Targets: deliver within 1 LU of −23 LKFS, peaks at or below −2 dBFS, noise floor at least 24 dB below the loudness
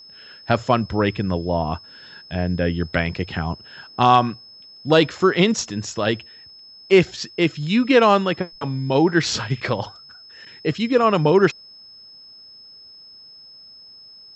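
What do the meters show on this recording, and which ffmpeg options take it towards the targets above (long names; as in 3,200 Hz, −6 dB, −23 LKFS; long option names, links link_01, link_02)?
interfering tone 5,200 Hz; level of the tone −42 dBFS; integrated loudness −20.0 LKFS; sample peak −1.5 dBFS; target loudness −23.0 LKFS
→ -af "bandreject=frequency=5200:width=30"
-af "volume=-3dB"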